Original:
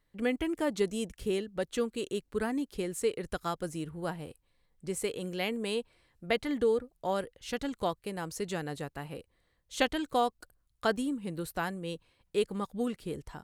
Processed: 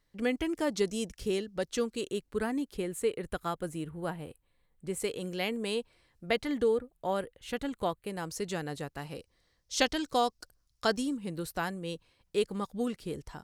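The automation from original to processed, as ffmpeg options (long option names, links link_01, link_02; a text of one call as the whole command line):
ffmpeg -i in.wav -af "asetnsamples=nb_out_samples=441:pad=0,asendcmd='2.01 equalizer g 0;2.77 equalizer g -8.5;5 equalizer g 3;6.68 equalizer g -7;8.1 equalizer g 3;8.97 equalizer g 13.5;11.17 equalizer g 5',equalizer=frequency=5400:width_type=o:width=0.66:gain=8" out.wav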